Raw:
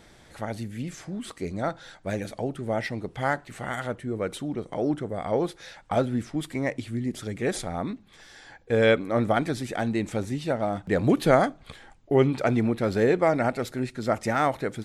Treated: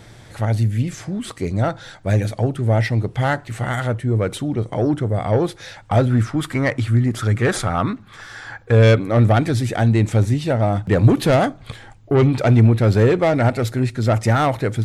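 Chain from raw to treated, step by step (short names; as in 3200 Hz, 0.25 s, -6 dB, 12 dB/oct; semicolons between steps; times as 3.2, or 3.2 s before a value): 6.1–8.72 bell 1300 Hz +12.5 dB 0.85 oct; soft clip -17.5 dBFS, distortion -13 dB; bell 110 Hz +14 dB 0.47 oct; gain +7.5 dB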